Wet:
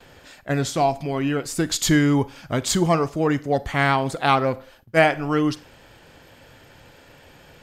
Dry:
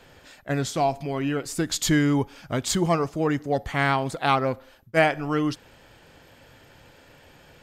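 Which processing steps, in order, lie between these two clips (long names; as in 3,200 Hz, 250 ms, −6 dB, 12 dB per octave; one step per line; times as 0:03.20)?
four-comb reverb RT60 0.37 s, combs from 33 ms, DRR 18 dB
noise gate with hold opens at −44 dBFS
level +3 dB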